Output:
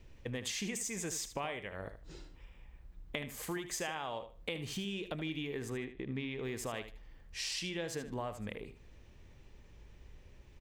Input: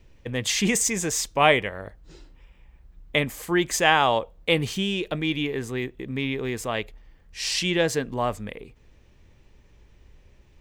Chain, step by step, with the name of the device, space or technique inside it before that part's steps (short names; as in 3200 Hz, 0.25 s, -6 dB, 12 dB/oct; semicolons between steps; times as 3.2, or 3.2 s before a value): serial compression, peaks first (compressor 6:1, threshold -29 dBFS, peak gain reduction 15.5 dB; compressor 1.5:1, threshold -41 dBFS, peak gain reduction 5.5 dB); 5.69–6.41 LPF 3100 Hz -> 7100 Hz 12 dB/oct; feedback echo 76 ms, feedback 20%, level -11 dB; gain -2.5 dB